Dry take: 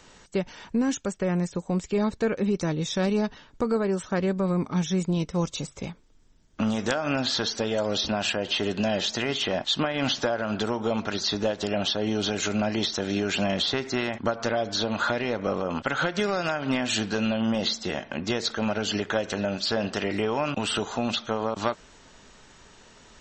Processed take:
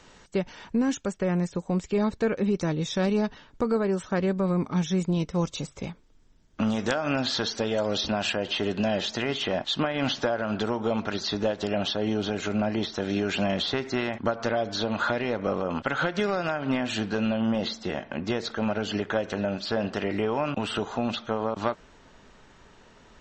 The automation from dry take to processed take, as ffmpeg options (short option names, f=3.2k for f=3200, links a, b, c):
-af "asetnsamples=n=441:p=0,asendcmd='8.48 lowpass f 3500;12.14 lowpass f 1800;12.97 lowpass f 3500;16.35 lowpass f 2200',lowpass=f=5.6k:p=1"